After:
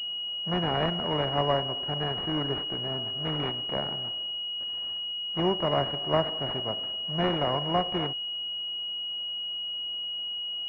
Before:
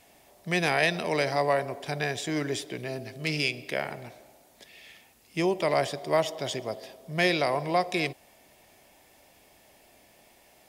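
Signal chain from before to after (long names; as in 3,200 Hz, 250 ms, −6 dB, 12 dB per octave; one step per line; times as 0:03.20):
spectral envelope flattened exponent 0.6
decimation without filtering 6×
switching amplifier with a slow clock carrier 2,900 Hz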